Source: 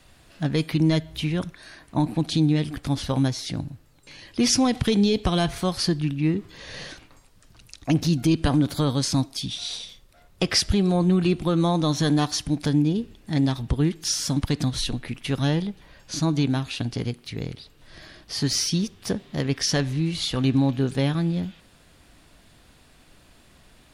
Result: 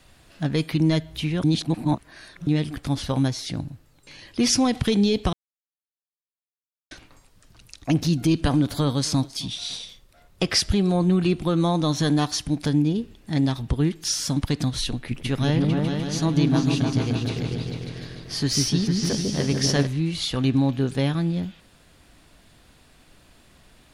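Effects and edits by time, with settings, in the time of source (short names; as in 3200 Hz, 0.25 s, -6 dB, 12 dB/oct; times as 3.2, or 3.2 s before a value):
1.44–2.47 reverse
5.33–6.91 mute
7.94–9.8 echo 0.266 s -21 dB
14.96–19.87 repeats that get brighter 0.149 s, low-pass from 400 Hz, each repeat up 2 oct, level 0 dB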